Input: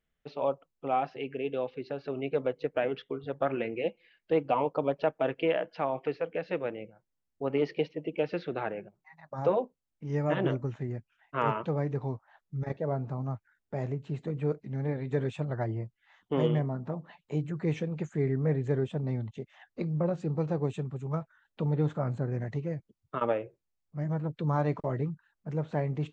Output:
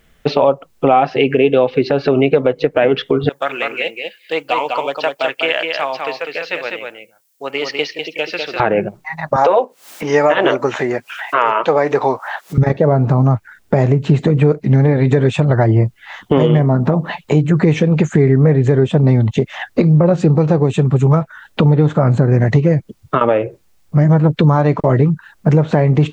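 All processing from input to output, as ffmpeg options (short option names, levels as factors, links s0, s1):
-filter_complex "[0:a]asettb=1/sr,asplit=3[s0][s1][s2];[s0]atrim=end=3.294[s3];[s1]atrim=start=3.29:end=8.6,asetpts=PTS-STARTPTS,afade=t=in:d=0.004:c=qsin,afade=t=out:st=5.306:d=0.004:c=qsin,aderivative,aecho=1:1:200:0.596,atrim=end_sample=234171[s4];[s2]atrim=start=8.596[s5];[s3][s4]acrossfade=d=0.004:c1=hsin:c2=qsin[s6];[s6][s5]acrossfade=d=0.004:c1=qsin:c2=hsin,asettb=1/sr,asplit=3[s7][s8][s9];[s7]atrim=end=9.364[s10];[s8]atrim=start=9.36:end=12.58,asetpts=PTS-STARTPTS,afade=t=in:d=0.004:c=qsin,afade=t=out:st=3.216:d=0.004:c=qsin,highpass=570,acompressor=mode=upward:threshold=0.00708:ratio=2.5:attack=3.2:release=140:knee=2.83:detection=peak[s11];[s9]atrim=start=12.576[s12];[s10][s11]acrossfade=d=0.004:c1=hsin:c2=qsin[s13];[s13][s12]acrossfade=d=0.004:c1=qsin:c2=hsin,acompressor=threshold=0.0141:ratio=6,alimiter=level_in=31.6:limit=0.891:release=50:level=0:latency=1,volume=0.891"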